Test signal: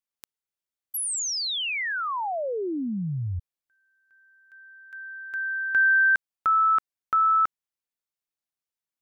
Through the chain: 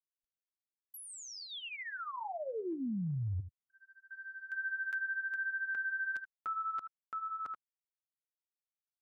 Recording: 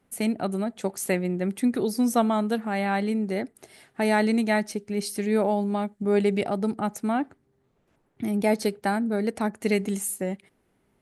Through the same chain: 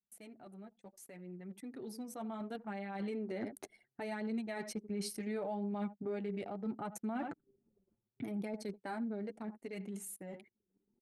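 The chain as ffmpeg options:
-filter_complex "[0:a]highpass=94,equalizer=f=140:t=o:w=0.36:g=-3,asplit=2[s0][s1];[s1]aecho=0:1:84:0.119[s2];[s0][s2]amix=inputs=2:normalize=0,flanger=delay=4.4:depth=6.2:regen=11:speed=0.7:shape=triangular,areverse,acompressor=threshold=0.0141:ratio=8:attack=0.1:release=489:knee=6:detection=rms,areverse,alimiter=level_in=11.9:limit=0.0631:level=0:latency=1:release=463,volume=0.0841,anlmdn=0.0000158,dynaudnorm=f=480:g=9:m=4.73,volume=1.12"

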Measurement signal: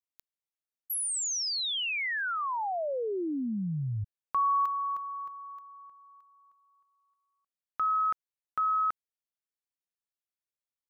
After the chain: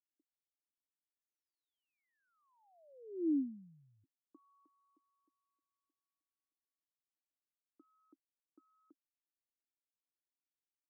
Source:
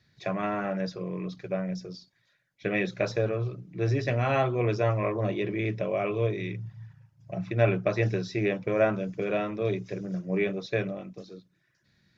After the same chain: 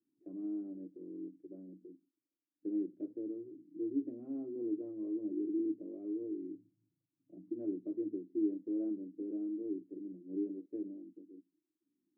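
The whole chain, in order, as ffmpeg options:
-af "asuperpass=centerf=300:order=4:qfactor=4.4,volume=1.12"

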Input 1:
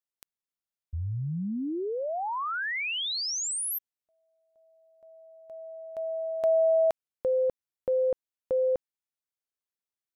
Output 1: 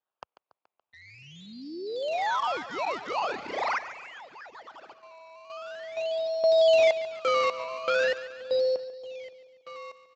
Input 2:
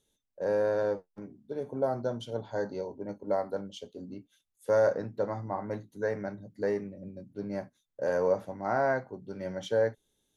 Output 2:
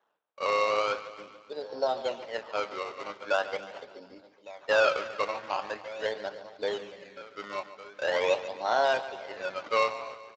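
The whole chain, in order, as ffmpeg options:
-filter_complex "[0:a]asplit=2[s0][s1];[s1]aecho=0:1:1157:0.133[s2];[s0][s2]amix=inputs=2:normalize=0,acrusher=samples=18:mix=1:aa=0.000001:lfo=1:lforange=18:lforate=0.43,highpass=760,highshelf=f=2700:g=-10.5,asplit=2[s3][s4];[s4]aecho=0:1:142|284|426|568|710|852:0.2|0.114|0.0648|0.037|0.0211|0.012[s5];[s3][s5]amix=inputs=2:normalize=0,volume=2.37" -ar 16000 -c:a libspeex -b:a 21k

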